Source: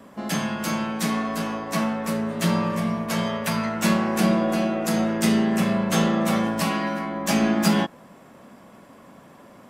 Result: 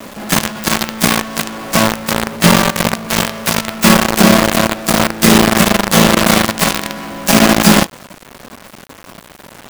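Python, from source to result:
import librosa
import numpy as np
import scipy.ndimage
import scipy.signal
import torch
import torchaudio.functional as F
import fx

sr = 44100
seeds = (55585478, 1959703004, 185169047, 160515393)

p1 = fx.rider(x, sr, range_db=3, speed_s=2.0)
p2 = x + (p1 * 10.0 ** (-1.5 / 20.0))
p3 = fx.quant_companded(p2, sr, bits=2)
y = p3 * 10.0 ** (-1.0 / 20.0)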